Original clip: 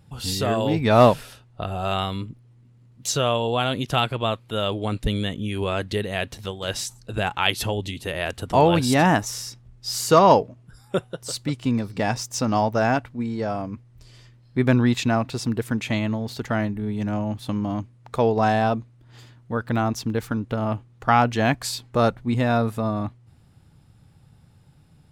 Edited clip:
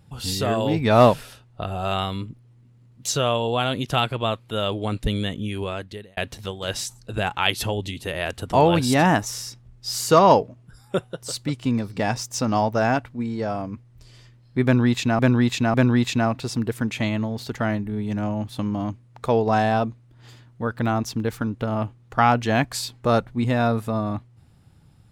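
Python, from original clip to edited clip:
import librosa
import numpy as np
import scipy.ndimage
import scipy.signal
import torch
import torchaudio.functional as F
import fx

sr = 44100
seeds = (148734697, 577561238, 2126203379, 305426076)

y = fx.edit(x, sr, fx.fade_out_span(start_s=5.43, length_s=0.74),
    fx.repeat(start_s=14.64, length_s=0.55, count=3), tone=tone)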